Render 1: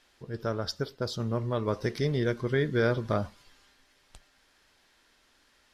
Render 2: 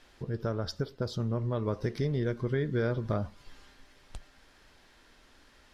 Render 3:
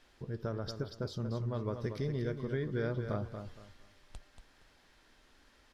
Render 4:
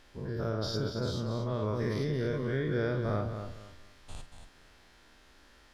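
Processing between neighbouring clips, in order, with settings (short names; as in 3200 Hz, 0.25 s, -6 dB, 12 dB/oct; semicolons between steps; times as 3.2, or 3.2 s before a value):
tilt -1.5 dB/oct; compressor 2:1, threshold -41 dBFS, peak gain reduction 12 dB; gain +5.5 dB
feedback echo 0.233 s, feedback 25%, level -8 dB; gain -5.5 dB
spectral dilation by 0.12 s; flutter echo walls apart 7.9 m, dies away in 0.23 s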